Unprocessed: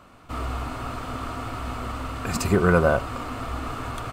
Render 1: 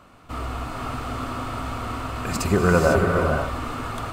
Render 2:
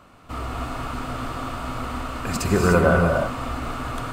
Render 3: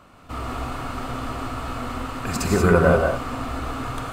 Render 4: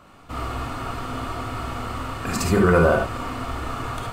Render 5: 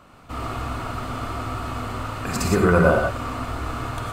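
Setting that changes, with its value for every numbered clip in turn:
gated-style reverb, gate: 530 ms, 330 ms, 210 ms, 90 ms, 140 ms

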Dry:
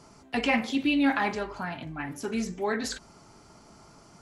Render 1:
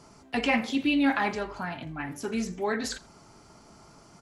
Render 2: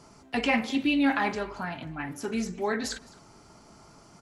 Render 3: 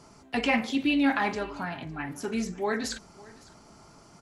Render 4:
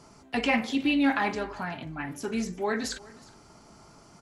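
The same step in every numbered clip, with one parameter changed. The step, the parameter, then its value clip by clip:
delay, time: 83 ms, 212 ms, 558 ms, 364 ms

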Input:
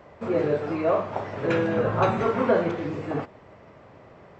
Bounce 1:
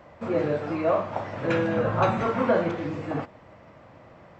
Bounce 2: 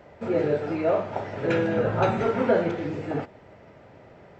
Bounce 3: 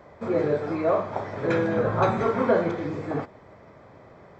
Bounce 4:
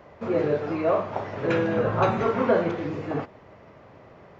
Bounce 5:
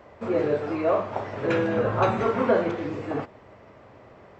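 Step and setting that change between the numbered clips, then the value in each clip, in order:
band-stop, frequency: 410 Hz, 1.1 kHz, 2.8 kHz, 7.8 kHz, 160 Hz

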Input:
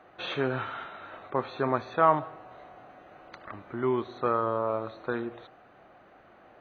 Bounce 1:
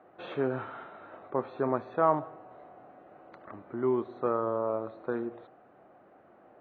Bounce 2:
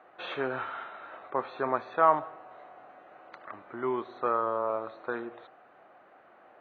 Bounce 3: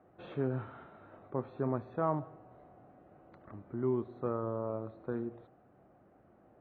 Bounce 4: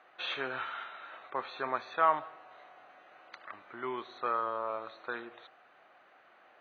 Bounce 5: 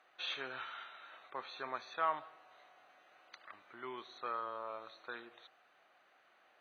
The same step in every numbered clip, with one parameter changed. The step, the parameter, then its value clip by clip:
band-pass filter, frequency: 360 Hz, 1 kHz, 120 Hz, 2.8 kHz, 7.3 kHz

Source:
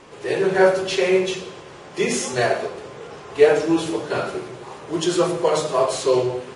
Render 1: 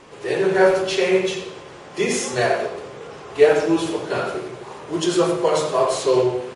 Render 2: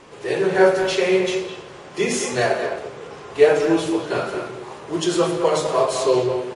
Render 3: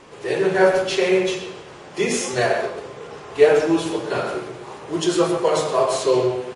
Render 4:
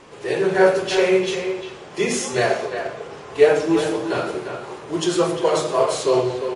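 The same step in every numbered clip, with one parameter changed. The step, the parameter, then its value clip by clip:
speakerphone echo, time: 90 ms, 210 ms, 130 ms, 350 ms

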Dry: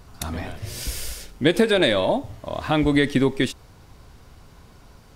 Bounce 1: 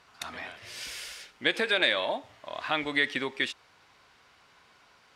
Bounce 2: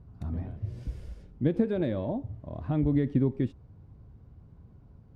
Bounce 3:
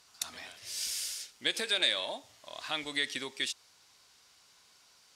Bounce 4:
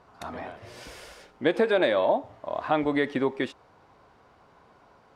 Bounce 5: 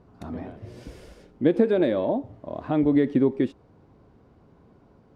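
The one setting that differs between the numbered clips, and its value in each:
band-pass filter, frequency: 2.2 kHz, 110 Hz, 5.7 kHz, 830 Hz, 310 Hz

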